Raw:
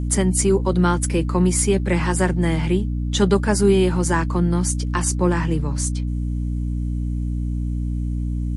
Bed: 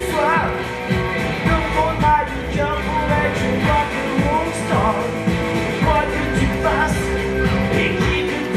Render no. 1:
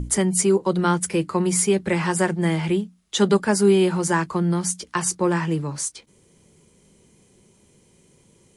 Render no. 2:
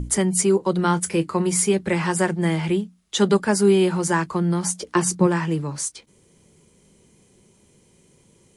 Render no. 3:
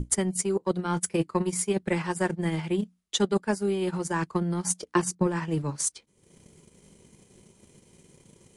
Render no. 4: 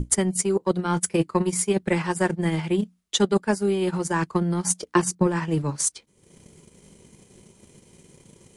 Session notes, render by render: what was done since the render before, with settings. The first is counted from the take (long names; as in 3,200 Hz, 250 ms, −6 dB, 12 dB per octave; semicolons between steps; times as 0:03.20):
mains-hum notches 60/120/180/240/300 Hz
0:00.84–0:01.74: double-tracking delay 24 ms −14 dB; 0:04.62–0:05.26: parametric band 1,000 Hz → 140 Hz +12 dB 1.3 octaves
reversed playback; downward compressor 5 to 1, threshold −27 dBFS, peak gain reduction 14 dB; reversed playback; transient designer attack +9 dB, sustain −11 dB
level +4 dB